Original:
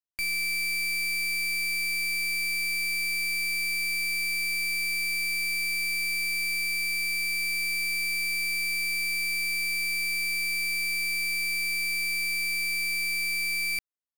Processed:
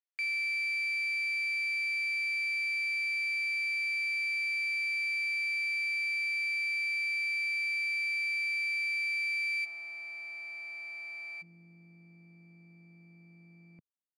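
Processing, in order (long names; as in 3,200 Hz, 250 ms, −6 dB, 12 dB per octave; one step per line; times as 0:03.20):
four-pole ladder band-pass 2,300 Hz, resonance 30%, from 0:09.64 880 Hz, from 0:11.41 200 Hz
level +7 dB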